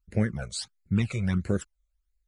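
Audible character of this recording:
phaser sweep stages 12, 1.5 Hz, lowest notch 270–1,100 Hz

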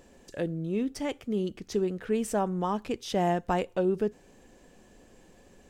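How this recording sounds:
background noise floor −58 dBFS
spectral slope −6.0 dB per octave

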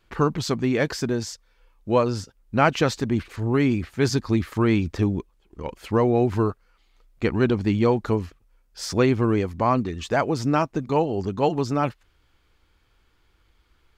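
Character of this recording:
background noise floor −64 dBFS
spectral slope −6.0 dB per octave

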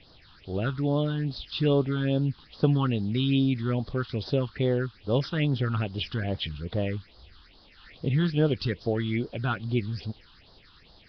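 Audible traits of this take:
a quantiser's noise floor 8 bits, dither triangular
phaser sweep stages 6, 2.4 Hz, lowest notch 550–2,400 Hz
Nellymoser

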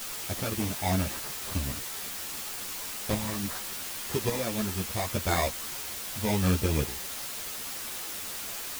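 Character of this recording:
aliases and images of a low sample rate 2,900 Hz
sample-and-hold tremolo, depth 70%
a quantiser's noise floor 6 bits, dither triangular
a shimmering, thickened sound

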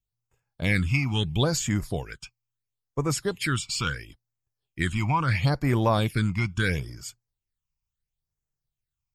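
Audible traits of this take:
phaser sweep stages 8, 0.74 Hz, lowest notch 480–3,900 Hz

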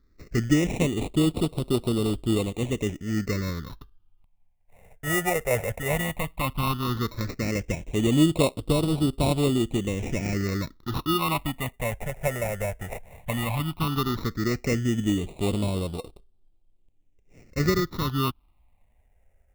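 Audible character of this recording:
aliases and images of a low sample rate 1,600 Hz, jitter 0%
phaser sweep stages 6, 0.14 Hz, lowest notch 290–1,800 Hz

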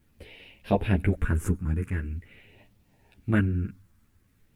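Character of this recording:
phaser sweep stages 4, 0.45 Hz, lowest notch 650–1,300 Hz
a quantiser's noise floor 12 bits, dither none
a shimmering, thickened sound

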